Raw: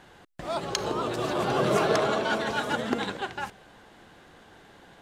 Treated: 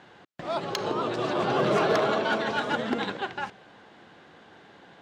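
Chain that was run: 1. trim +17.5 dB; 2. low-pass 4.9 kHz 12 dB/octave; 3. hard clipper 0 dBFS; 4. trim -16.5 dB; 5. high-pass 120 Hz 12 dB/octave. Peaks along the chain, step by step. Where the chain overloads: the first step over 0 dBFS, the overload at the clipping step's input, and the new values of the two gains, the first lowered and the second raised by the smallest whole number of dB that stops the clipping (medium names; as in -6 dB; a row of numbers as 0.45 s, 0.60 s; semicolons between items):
+10.0 dBFS, +7.5 dBFS, 0.0 dBFS, -16.5 dBFS, -14.0 dBFS; step 1, 7.5 dB; step 1 +9.5 dB, step 4 -8.5 dB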